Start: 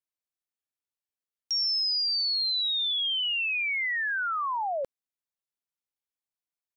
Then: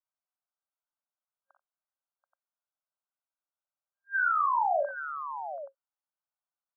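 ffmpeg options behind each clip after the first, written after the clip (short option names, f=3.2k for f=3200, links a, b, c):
-filter_complex "[0:a]afftfilt=real='re*between(b*sr/4096,540,1600)':imag='im*between(b*sr/4096,540,1600)':win_size=4096:overlap=0.75,asplit=2[a][b];[b]aecho=0:1:41|56|60|87|732|827:0.531|0.282|0.335|0.112|0.224|0.282[c];[a][c]amix=inputs=2:normalize=0,volume=1.5dB"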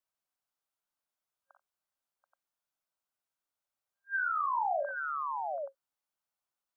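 -filter_complex "[0:a]acrossover=split=550|1300[a][b][c];[a]acompressor=threshold=-41dB:ratio=4[d];[b]acompressor=threshold=-39dB:ratio=4[e];[c]acompressor=threshold=-42dB:ratio=4[f];[d][e][f]amix=inputs=3:normalize=0,volume=3dB"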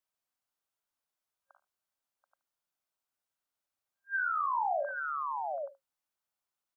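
-af "aecho=1:1:75:0.112"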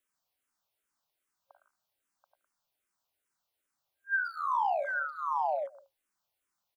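-filter_complex "[0:a]asplit=2[a][b];[b]adelay=110,highpass=300,lowpass=3.4k,asoftclip=type=hard:threshold=-31dB,volume=-10dB[c];[a][c]amix=inputs=2:normalize=0,acompressor=threshold=-33dB:ratio=6,asplit=2[d][e];[e]afreqshift=-2.5[f];[d][f]amix=inputs=2:normalize=1,volume=8dB"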